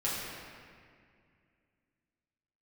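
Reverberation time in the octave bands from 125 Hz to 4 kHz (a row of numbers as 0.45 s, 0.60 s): 2.8 s, 2.9 s, 2.3 s, 2.0 s, 2.2 s, 1.5 s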